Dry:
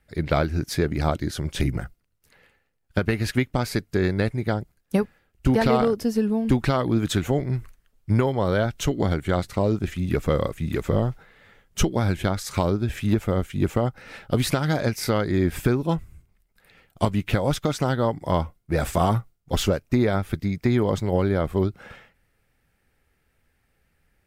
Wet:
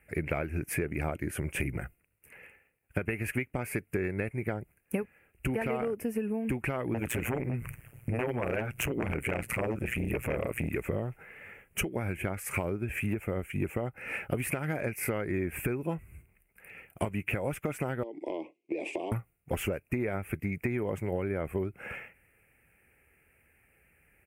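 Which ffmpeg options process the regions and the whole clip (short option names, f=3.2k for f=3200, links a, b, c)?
-filter_complex "[0:a]asettb=1/sr,asplit=3[a][b][c];[a]atrim=end=6.944[d];[b]atrim=start=6.94:end=10.69,asetpts=PTS-STARTPTS,afade=t=in:d=0.004:c=qsin,afade=t=out:st=3.746:d=0.004:c=qsin,acompressor=threshold=-42dB:ratio=1.5:attack=3.2:release=140:knee=1:detection=peak,tremolo=f=120:d=0.974,aeval=exprs='0.188*sin(PI/2*4.47*val(0)/0.188)':c=same[e];[c]atrim=start=10.686[f];[d][e]acrossfade=d=0.004:c1=hsin:c2=qsin[g];[g][f]acrossfade=d=0.004:c1=qsin:c2=hsin,asettb=1/sr,asplit=3[h][i][j];[h]atrim=end=18.034[k];[i]atrim=start=18.03:end=19.12,asetpts=PTS-STARTPTS,afade=t=in:d=0.004:c=qsin,afade=t=out:st=1.086:d=0.004:c=qsin,highpass=f=310:w=0.5412,highpass=f=310:w=1.3066,equalizer=f=320:t=q:w=4:g=10,equalizer=f=520:t=q:w=4:g=-4,equalizer=f=760:t=q:w=4:g=-6,equalizer=f=1.3k:t=q:w=4:g=3,equalizer=f=1.8k:t=q:w=4:g=-7,equalizer=f=3.8k:t=q:w=4:g=8,lowpass=f=5.4k:w=0.5412,lowpass=f=5.4k:w=1.3066,acompressor=threshold=-28dB:ratio=10:attack=3.2:release=140:knee=1:detection=peak,asuperstop=centerf=1400:order=4:qfactor=0.85[l];[j]atrim=start=19.116[m];[k][l]acrossfade=d=0.004:c1=hsin:c2=qsin[n];[n][m]acrossfade=d=0.004:c1=qsin:c2=hsin,firequalizer=gain_entry='entry(260,0);entry(370,4);entry(1100,-1);entry(2500,12);entry(3700,-22);entry(9200,6)':delay=0.05:min_phase=1,acompressor=threshold=-29dB:ratio=6,highpass=45"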